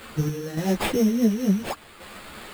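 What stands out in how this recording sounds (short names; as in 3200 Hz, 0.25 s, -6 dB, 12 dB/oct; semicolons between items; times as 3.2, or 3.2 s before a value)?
a quantiser's noise floor 8-bit, dither triangular; random-step tremolo; aliases and images of a low sample rate 5900 Hz, jitter 0%; a shimmering, thickened sound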